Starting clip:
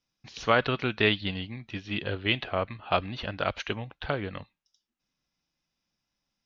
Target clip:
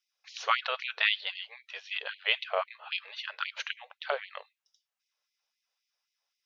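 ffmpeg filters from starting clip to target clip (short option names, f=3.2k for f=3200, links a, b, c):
-filter_complex "[0:a]asettb=1/sr,asplit=3[a][b][c];[a]atrim=end=2.904[d];[b]atrim=start=2.9:end=3.67,asetpts=PTS-STARTPTS,afade=t=in:d=0.004:c=qsin,afade=t=out:st=0.766:d=0.004:c=qsin,asuperstop=centerf=740:order=4:qfactor=5.3[e];[c]atrim=start=3.666[f];[d][e]acrossfade=d=0.004:c1=hsin:c2=qsin[g];[g][f]acrossfade=d=0.004:c1=qsin:c2=hsin,afftfilt=real='re*gte(b*sr/1024,390*pow(2000/390,0.5+0.5*sin(2*PI*3.8*pts/sr)))':imag='im*gte(b*sr/1024,390*pow(2000/390,0.5+0.5*sin(2*PI*3.8*pts/sr)))':win_size=1024:overlap=0.75"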